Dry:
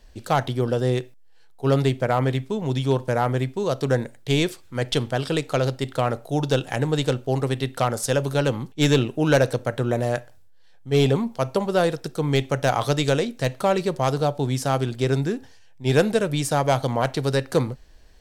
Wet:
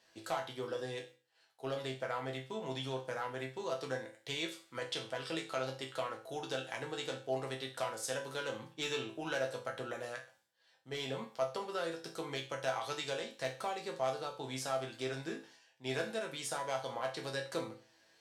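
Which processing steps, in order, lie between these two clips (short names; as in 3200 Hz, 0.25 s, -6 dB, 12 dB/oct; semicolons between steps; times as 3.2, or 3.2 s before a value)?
weighting filter A; compressor 2:1, threshold -34 dBFS, peak gain reduction 11 dB; resonator bank A2 minor, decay 0.36 s; gain +9 dB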